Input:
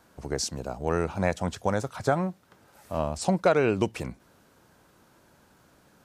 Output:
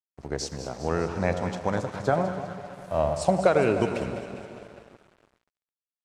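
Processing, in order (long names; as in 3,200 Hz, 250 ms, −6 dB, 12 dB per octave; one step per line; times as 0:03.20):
0:02.13–0:03.47: graphic EQ with 15 bands 100 Hz +4 dB, 250 Hz −4 dB, 630 Hz +7 dB, 10,000 Hz +8 dB
delay that swaps between a low-pass and a high-pass 101 ms, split 980 Hz, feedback 77%, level −8 dB
dense smooth reverb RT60 3.9 s, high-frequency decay 0.95×, DRR 10 dB
dead-zone distortion −46 dBFS
high-frequency loss of the air 54 metres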